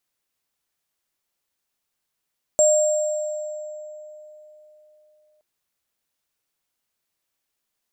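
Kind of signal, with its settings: sine partials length 2.82 s, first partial 609 Hz, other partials 7.45 kHz, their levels -2.5 dB, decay 3.61 s, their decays 1.87 s, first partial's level -13.5 dB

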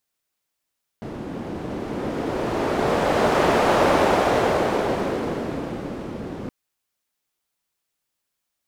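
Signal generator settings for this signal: wind-like swept noise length 5.47 s, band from 270 Hz, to 630 Hz, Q 1.1, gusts 1, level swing 14 dB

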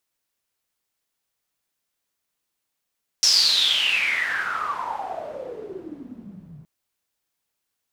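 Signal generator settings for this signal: swept filtered noise pink, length 3.42 s bandpass, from 5.6 kHz, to 140 Hz, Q 12, exponential, gain ramp -28 dB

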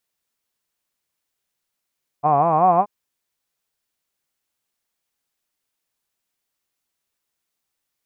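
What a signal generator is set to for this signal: formant-synthesis vowel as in hod, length 0.63 s, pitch 140 Hz, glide +5.5 st, vibrato depth 1.35 st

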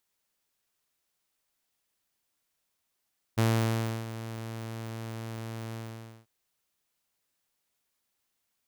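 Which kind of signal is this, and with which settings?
ADSR saw 113 Hz, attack 19 ms, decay 659 ms, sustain -14.5 dB, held 2.37 s, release 521 ms -19 dBFS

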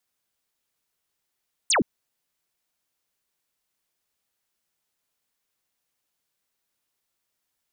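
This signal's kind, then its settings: laser zap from 9.7 kHz, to 170 Hz, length 0.12 s sine, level -17.5 dB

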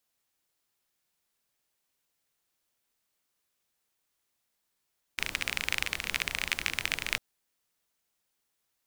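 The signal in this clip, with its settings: rain from filtered ticks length 2.00 s, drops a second 29, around 2.3 kHz, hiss -10.5 dB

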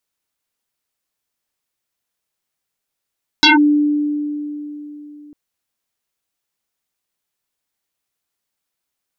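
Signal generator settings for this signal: FM tone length 1.90 s, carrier 295 Hz, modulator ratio 2.06, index 8.4, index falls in 0.15 s linear, decay 3.53 s, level -5.5 dB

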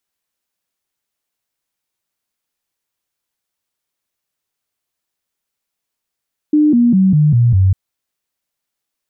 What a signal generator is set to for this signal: stepped sine 301 Hz down, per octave 3, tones 6, 0.20 s, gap 0.00 s -7.5 dBFS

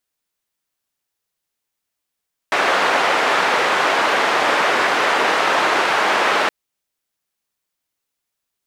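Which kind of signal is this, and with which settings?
noise band 440–1600 Hz, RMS -17 dBFS 3.97 s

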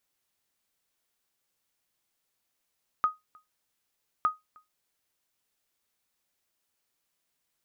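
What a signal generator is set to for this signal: sonar ping 1.25 kHz, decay 0.18 s, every 1.21 s, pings 2, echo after 0.31 s, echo -29.5 dB -16.5 dBFS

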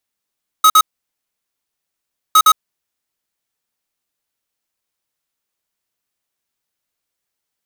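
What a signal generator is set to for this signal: beep pattern square 1.27 kHz, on 0.06 s, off 0.05 s, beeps 2, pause 1.54 s, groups 2, -8 dBFS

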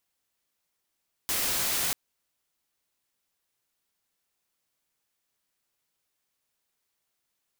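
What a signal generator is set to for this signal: noise white, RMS -28 dBFS 0.64 s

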